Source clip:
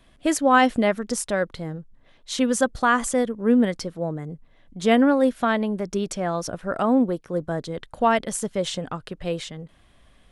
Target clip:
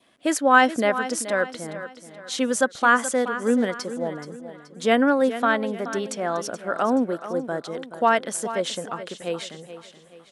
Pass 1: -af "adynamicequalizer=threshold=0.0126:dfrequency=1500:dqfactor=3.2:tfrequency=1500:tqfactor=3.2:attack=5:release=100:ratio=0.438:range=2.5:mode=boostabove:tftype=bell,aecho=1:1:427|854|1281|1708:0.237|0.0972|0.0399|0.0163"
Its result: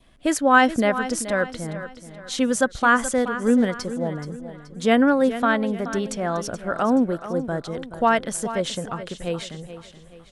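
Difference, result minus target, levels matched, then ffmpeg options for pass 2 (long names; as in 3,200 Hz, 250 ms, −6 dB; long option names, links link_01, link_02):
250 Hz band +2.5 dB
-af "adynamicequalizer=threshold=0.0126:dfrequency=1500:dqfactor=3.2:tfrequency=1500:tqfactor=3.2:attack=5:release=100:ratio=0.438:range=2.5:mode=boostabove:tftype=bell,highpass=260,aecho=1:1:427|854|1281|1708:0.237|0.0972|0.0399|0.0163"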